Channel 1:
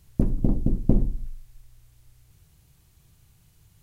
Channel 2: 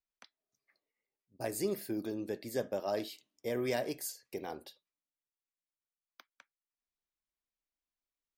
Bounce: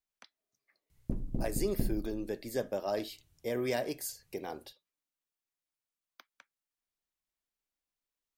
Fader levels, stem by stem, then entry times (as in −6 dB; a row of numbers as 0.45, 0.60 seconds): −13.0, +1.0 decibels; 0.90, 0.00 seconds